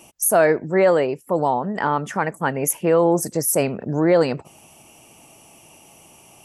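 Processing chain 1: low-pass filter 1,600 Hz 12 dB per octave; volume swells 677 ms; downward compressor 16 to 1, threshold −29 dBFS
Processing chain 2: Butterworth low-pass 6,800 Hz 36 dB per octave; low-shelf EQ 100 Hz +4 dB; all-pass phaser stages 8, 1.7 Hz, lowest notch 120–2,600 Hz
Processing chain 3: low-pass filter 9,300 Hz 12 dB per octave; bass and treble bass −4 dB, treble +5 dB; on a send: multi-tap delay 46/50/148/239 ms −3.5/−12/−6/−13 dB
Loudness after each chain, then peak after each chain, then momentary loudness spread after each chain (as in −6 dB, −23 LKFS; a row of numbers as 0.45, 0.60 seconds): −36.0, −22.5, −17.5 LKFS; −18.5, −6.0, −2.0 dBFS; 20, 8, 7 LU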